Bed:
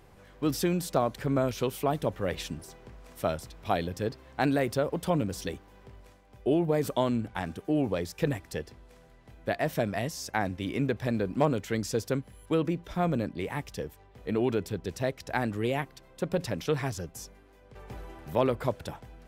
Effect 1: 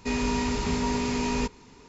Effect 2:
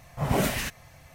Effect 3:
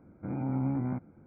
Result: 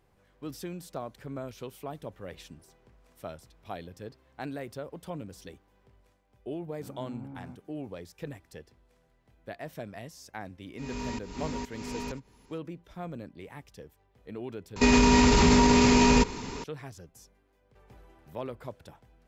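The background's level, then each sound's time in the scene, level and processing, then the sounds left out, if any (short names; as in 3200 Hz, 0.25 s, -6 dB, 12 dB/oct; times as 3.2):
bed -11.5 dB
6.57 add 3 -13 dB
10.72 add 1 -9 dB + pump 129 bpm, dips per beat 1, -21 dB, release 0.38 s
14.76 replace with 1 -10.5 dB + maximiser +24.5 dB
not used: 2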